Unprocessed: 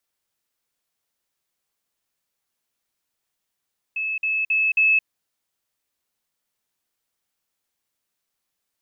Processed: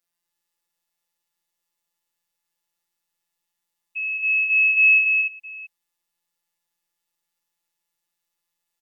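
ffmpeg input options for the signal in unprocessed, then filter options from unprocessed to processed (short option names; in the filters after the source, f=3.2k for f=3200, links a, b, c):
-f lavfi -i "aevalsrc='pow(10,(-23+3*floor(t/0.27))/20)*sin(2*PI*2600*t)*clip(min(mod(t,0.27),0.22-mod(t,0.27))/0.005,0,1)':d=1.08:s=44100"
-filter_complex "[0:a]afftfilt=real='hypot(re,im)*cos(PI*b)':imag='0':win_size=1024:overlap=0.75,asplit=2[a][b];[b]aecho=0:1:57|223|288|672:0.447|0.335|0.596|0.119[c];[a][c]amix=inputs=2:normalize=0"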